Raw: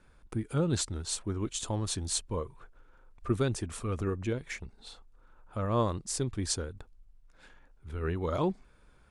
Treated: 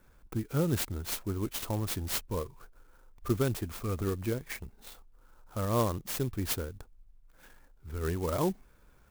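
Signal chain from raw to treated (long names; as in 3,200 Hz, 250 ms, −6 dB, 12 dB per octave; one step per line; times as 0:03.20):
converter with an unsteady clock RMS 0.054 ms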